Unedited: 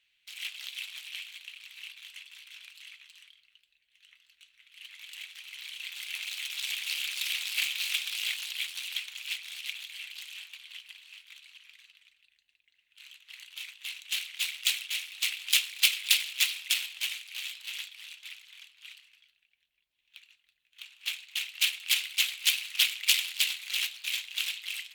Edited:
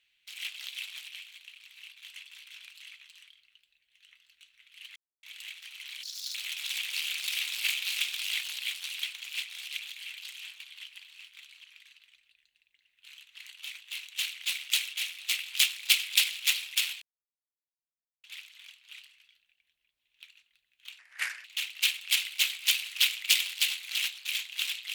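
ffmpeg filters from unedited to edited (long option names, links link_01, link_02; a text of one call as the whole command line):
ffmpeg -i in.wav -filter_complex "[0:a]asplit=10[link_01][link_02][link_03][link_04][link_05][link_06][link_07][link_08][link_09][link_10];[link_01]atrim=end=1.082[link_11];[link_02]atrim=start=1.078:end=2.032,asetpts=PTS-STARTPTS,volume=-4.5dB[link_12];[link_03]atrim=start=2.028:end=4.96,asetpts=PTS-STARTPTS,afade=type=out:start_time=2.928:duration=0.004:curve=hsin,apad=pad_dur=0.27[link_13];[link_04]atrim=start=4.96:end=5.764,asetpts=PTS-STARTPTS,afade=type=in:duration=0.004:curve=hsin[link_14];[link_05]atrim=start=5.76:end=6.28,asetpts=PTS-STARTPTS,asetrate=72324,aresample=44100[link_15];[link_06]atrim=start=6.276:end=16.95,asetpts=PTS-STARTPTS,afade=type=out:start_time=10.67:duration=0.004:curve=hsin[link_16];[link_07]atrim=start=16.95:end=18.17,asetpts=PTS-STARTPTS,volume=0[link_17];[link_08]atrim=start=18.17:end=20.924,asetpts=PTS-STARTPTS,afade=type=in:duration=0.004:curve=hsin[link_18];[link_09]atrim=start=20.92:end=21.23,asetpts=PTS-STARTPTS,asetrate=29988,aresample=44100,atrim=end_sample=20104,asetpts=PTS-STARTPTS[link_19];[link_10]atrim=start=21.226[link_20];[link_11][link_12]acrossfade=duration=0.004:curve1=hsin:curve2=hsin[link_21];[link_13][link_14]concat=n=2:v=0:a=1[link_22];[link_21][link_22]acrossfade=duration=0.004:curve1=hsin:curve2=hsin[link_23];[link_23][link_15]acrossfade=duration=0.004:curve1=hsin:curve2=hsin[link_24];[link_16][link_17][link_18]concat=n=3:v=0:a=1[link_25];[link_24][link_25]acrossfade=duration=0.004:curve1=hsin:curve2=hsin[link_26];[link_26][link_19]acrossfade=duration=0.004:curve1=hsin:curve2=hsin[link_27];[link_27][link_20]acrossfade=duration=0.004:curve1=hsin:curve2=hsin" out.wav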